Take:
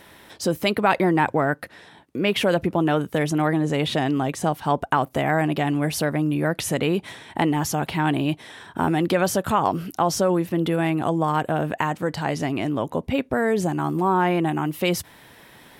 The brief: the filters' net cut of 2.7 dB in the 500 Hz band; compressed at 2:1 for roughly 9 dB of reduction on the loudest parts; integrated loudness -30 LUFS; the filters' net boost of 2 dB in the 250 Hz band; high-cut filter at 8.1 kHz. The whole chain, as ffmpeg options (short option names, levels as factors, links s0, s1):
-af "lowpass=8100,equalizer=f=250:t=o:g=5,equalizer=f=500:t=o:g=-5.5,acompressor=threshold=0.0224:ratio=2,volume=1.12"